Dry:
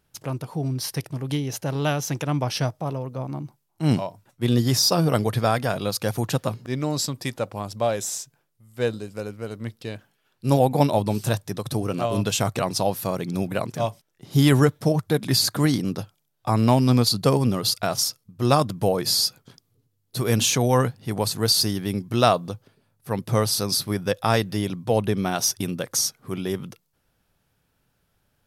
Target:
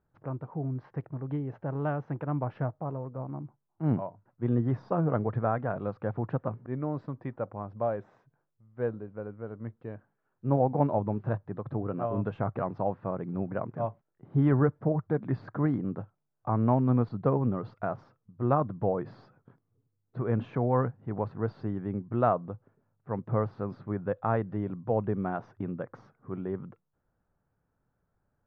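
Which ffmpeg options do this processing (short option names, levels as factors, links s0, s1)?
-af "lowpass=f=1500:w=0.5412,lowpass=f=1500:w=1.3066,volume=0.473"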